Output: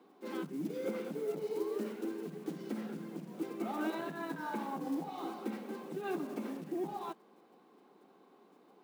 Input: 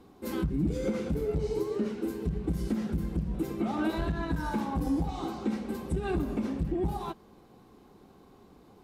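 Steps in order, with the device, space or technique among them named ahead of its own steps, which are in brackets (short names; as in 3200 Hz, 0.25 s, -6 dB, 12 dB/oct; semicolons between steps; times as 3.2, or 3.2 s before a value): early digital voice recorder (BPF 290–3600 Hz; block floating point 5-bit); steep high-pass 150 Hz; 1.46–3.35 flutter echo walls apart 8.8 m, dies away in 0.26 s; gain -4 dB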